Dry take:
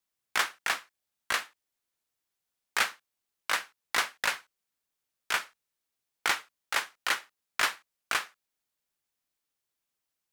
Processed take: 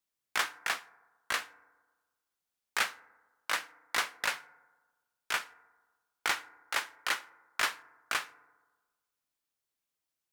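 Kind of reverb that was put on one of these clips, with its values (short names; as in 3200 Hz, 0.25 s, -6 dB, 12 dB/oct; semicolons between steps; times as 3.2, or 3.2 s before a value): FDN reverb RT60 1.3 s, low-frequency decay 0.95×, high-frequency decay 0.3×, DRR 17.5 dB; gain -3 dB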